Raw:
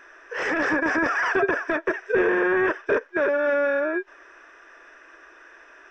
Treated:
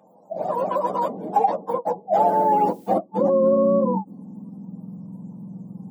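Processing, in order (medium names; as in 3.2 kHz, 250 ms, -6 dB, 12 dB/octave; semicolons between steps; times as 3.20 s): spectrum inverted on a logarithmic axis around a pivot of 560 Hz; 2.24–2.93 s: added noise blue -60 dBFS; high-pass sweep 610 Hz -> 160 Hz, 1.57–5.08 s; trim +3 dB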